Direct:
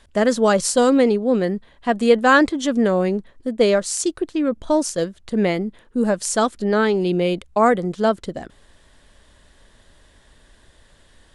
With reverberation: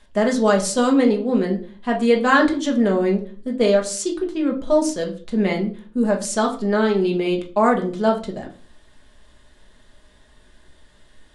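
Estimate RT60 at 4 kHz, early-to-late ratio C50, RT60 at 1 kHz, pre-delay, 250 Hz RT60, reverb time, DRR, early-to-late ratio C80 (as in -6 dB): 0.30 s, 12.0 dB, 0.35 s, 5 ms, 0.55 s, 0.40 s, 0.0 dB, 16.5 dB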